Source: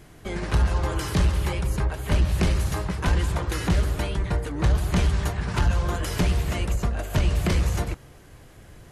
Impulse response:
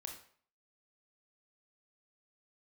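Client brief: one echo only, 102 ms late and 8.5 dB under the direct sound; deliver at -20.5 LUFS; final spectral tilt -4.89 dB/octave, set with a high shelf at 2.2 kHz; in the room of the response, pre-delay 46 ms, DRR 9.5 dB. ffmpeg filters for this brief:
-filter_complex "[0:a]highshelf=f=2200:g=5,aecho=1:1:102:0.376,asplit=2[s0][s1];[1:a]atrim=start_sample=2205,adelay=46[s2];[s1][s2]afir=irnorm=-1:irlink=0,volume=0.501[s3];[s0][s3]amix=inputs=2:normalize=0,volume=1.5"

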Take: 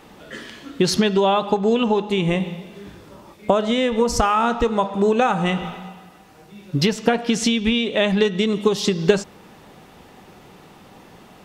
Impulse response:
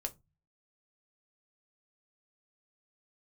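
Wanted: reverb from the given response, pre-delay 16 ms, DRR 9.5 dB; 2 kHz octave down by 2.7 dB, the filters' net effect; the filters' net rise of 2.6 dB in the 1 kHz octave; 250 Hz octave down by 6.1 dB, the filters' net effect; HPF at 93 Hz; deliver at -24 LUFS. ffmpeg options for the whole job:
-filter_complex "[0:a]highpass=93,equalizer=f=250:t=o:g=-8,equalizer=f=1000:t=o:g=5,equalizer=f=2000:t=o:g=-5,asplit=2[s0][s1];[1:a]atrim=start_sample=2205,adelay=16[s2];[s1][s2]afir=irnorm=-1:irlink=0,volume=0.355[s3];[s0][s3]amix=inputs=2:normalize=0,volume=0.668"

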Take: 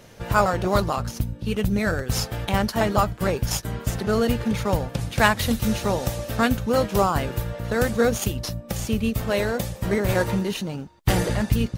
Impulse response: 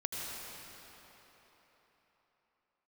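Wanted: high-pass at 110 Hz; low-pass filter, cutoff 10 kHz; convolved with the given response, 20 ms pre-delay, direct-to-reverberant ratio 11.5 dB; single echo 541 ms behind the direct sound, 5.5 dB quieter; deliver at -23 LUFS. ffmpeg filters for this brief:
-filter_complex "[0:a]highpass=110,lowpass=10000,aecho=1:1:541:0.531,asplit=2[s0][s1];[1:a]atrim=start_sample=2205,adelay=20[s2];[s1][s2]afir=irnorm=-1:irlink=0,volume=0.178[s3];[s0][s3]amix=inputs=2:normalize=0,volume=1.06"

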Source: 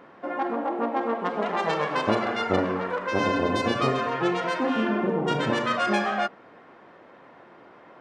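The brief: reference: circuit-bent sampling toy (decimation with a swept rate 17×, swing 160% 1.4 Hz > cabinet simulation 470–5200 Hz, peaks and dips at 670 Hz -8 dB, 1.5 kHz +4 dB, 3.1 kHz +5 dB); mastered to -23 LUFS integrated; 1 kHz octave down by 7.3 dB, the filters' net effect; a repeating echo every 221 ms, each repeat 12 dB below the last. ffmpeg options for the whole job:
-af "equalizer=f=1000:t=o:g=-9,aecho=1:1:221|442|663:0.251|0.0628|0.0157,acrusher=samples=17:mix=1:aa=0.000001:lfo=1:lforange=27.2:lforate=1.4,highpass=470,equalizer=f=670:t=q:w=4:g=-8,equalizer=f=1500:t=q:w=4:g=4,equalizer=f=3100:t=q:w=4:g=5,lowpass=f=5200:w=0.5412,lowpass=f=5200:w=1.3066,volume=2.51"

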